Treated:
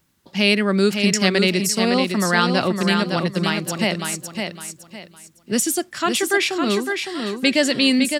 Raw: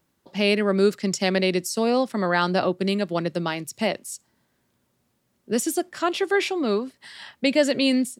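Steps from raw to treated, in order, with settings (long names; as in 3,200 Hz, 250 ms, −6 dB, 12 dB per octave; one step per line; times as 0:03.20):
parametric band 540 Hz −8.5 dB 2.2 octaves
on a send: repeating echo 559 ms, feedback 29%, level −5.5 dB
on the sum: level +7.5 dB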